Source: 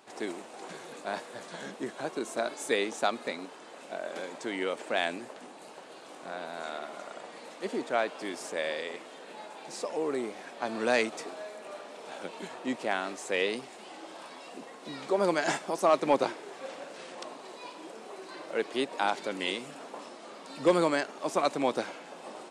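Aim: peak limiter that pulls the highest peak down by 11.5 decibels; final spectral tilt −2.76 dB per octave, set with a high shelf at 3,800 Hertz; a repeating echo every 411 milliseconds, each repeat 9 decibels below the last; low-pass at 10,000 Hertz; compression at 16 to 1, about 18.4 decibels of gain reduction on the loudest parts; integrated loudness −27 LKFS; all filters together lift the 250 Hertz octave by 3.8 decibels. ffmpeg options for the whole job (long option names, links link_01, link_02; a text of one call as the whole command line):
ffmpeg -i in.wav -af "lowpass=10000,equalizer=frequency=250:width_type=o:gain=5,highshelf=frequency=3800:gain=6,acompressor=threshold=-35dB:ratio=16,alimiter=level_in=7dB:limit=-24dB:level=0:latency=1,volume=-7dB,aecho=1:1:411|822|1233|1644:0.355|0.124|0.0435|0.0152,volume=15dB" out.wav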